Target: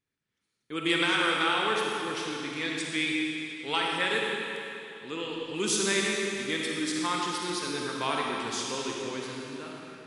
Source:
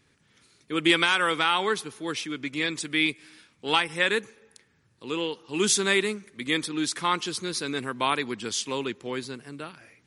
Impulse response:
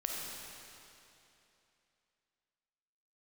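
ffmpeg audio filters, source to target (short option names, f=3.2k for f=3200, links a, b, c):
-filter_complex "[0:a]agate=range=-17dB:threshold=-56dB:ratio=16:detection=peak[a];[1:a]atrim=start_sample=2205[b];[a][b]afir=irnorm=-1:irlink=0,volume=-5.5dB"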